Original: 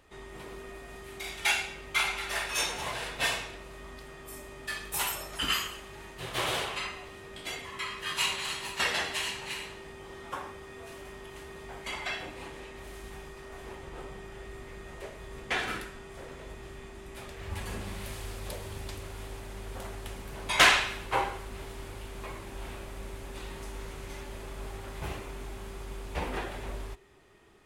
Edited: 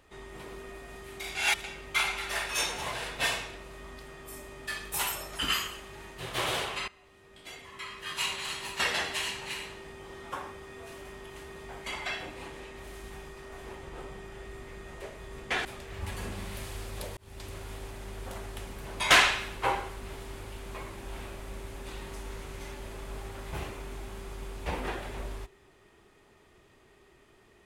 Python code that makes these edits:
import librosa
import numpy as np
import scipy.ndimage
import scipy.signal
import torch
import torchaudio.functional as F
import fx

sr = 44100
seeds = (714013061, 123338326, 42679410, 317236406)

y = fx.edit(x, sr, fx.reverse_span(start_s=1.35, length_s=0.29),
    fx.fade_in_from(start_s=6.88, length_s=1.93, floor_db=-18.0),
    fx.cut(start_s=15.65, length_s=1.49),
    fx.fade_in_span(start_s=18.66, length_s=0.36), tone=tone)